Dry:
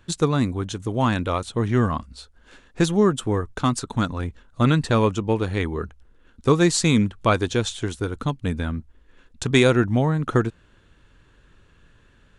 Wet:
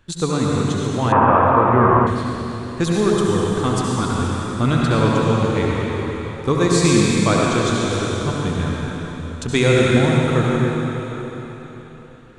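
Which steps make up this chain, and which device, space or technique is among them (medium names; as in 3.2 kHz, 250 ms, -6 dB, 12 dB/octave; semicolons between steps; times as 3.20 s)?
cathedral (reverberation RT60 4.0 s, pre-delay 64 ms, DRR -4.5 dB); 1.12–2.07 s: FFT filter 230 Hz 0 dB, 1 kHz +13 dB, 2.8 kHz -5 dB, 4.3 kHz -28 dB; trim -1.5 dB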